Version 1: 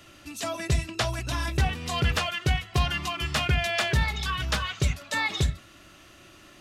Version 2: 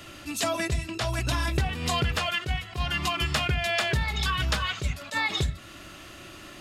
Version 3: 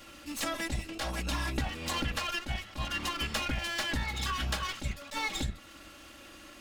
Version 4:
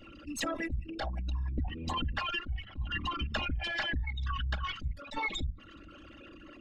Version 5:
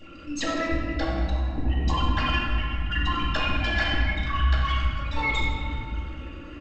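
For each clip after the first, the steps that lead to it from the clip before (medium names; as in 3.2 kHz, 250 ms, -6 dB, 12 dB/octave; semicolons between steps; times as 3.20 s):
band-stop 5.9 kHz, Q 17; compression, threshold -30 dBFS, peak gain reduction 11 dB; attacks held to a fixed rise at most 250 dB/s; trim +7 dB
comb filter that takes the minimum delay 3.6 ms; trim -4.5 dB
resonances exaggerated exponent 3
delay 93 ms -14.5 dB; reverberation RT60 2.6 s, pre-delay 6 ms, DRR -4 dB; trim +3 dB; G.722 64 kbps 16 kHz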